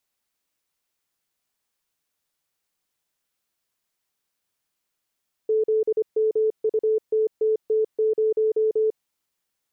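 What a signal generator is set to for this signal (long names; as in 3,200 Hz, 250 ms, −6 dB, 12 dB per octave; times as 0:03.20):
Morse code "ZMUTTT0" 25 words per minute 436 Hz −17.5 dBFS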